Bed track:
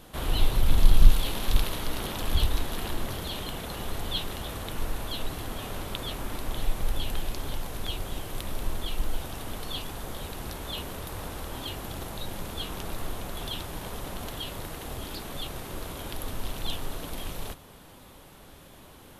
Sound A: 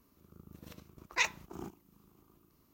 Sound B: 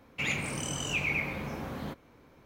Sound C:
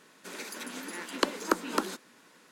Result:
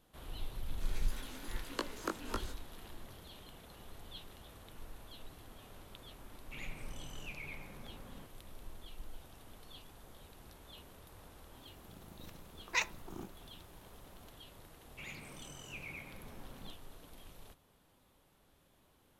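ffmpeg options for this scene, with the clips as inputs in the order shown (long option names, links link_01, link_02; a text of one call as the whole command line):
ffmpeg -i bed.wav -i cue0.wav -i cue1.wav -i cue2.wav -filter_complex "[2:a]asplit=2[link_01][link_02];[0:a]volume=-19dB[link_03];[3:a]flanger=delay=17.5:depth=4.2:speed=1.6[link_04];[link_01]highshelf=frequency=8900:gain=-10.5[link_05];[link_04]atrim=end=2.51,asetpts=PTS-STARTPTS,volume=-8dB,afade=type=in:duration=0.004:curve=hsin,afade=type=out:start_time=2.506:duration=0.004:curve=hsin,adelay=560[link_06];[link_05]atrim=end=2.45,asetpts=PTS-STARTPTS,volume=-16.5dB,afade=type=in:duration=0.004:curve=hsin,afade=type=out:start_time=2.446:duration=0.004:curve=hsin,adelay=6330[link_07];[1:a]atrim=end=2.73,asetpts=PTS-STARTPTS,volume=-3dB,afade=type=in:duration=0.004:curve=hsin,afade=type=out:start_time=2.726:duration=0.004:curve=hsin,adelay=11570[link_08];[link_02]atrim=end=2.45,asetpts=PTS-STARTPTS,volume=-17dB,afade=type=in:duration=0.004:curve=hsin,afade=type=out:start_time=2.446:duration=0.004:curve=hsin,adelay=14790[link_09];[link_03][link_06][link_07][link_08][link_09]amix=inputs=5:normalize=0" out.wav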